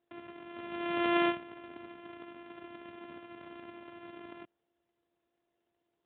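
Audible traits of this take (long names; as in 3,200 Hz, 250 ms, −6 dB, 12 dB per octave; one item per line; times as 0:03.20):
a buzz of ramps at a fixed pitch in blocks of 128 samples
AMR narrowband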